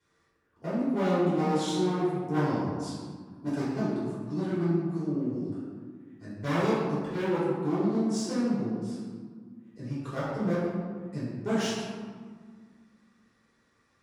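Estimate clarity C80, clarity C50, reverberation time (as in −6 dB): 0.5 dB, −2.0 dB, 1.8 s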